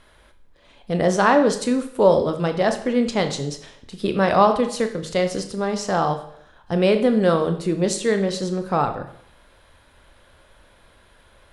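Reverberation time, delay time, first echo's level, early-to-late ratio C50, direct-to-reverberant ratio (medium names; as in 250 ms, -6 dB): 0.70 s, no echo, no echo, 10.5 dB, 7.0 dB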